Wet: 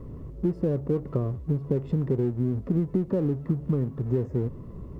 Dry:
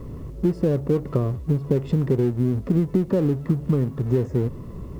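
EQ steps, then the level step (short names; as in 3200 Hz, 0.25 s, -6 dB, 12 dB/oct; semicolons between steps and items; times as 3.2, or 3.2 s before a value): high shelf 2100 Hz -10.5 dB; -4.5 dB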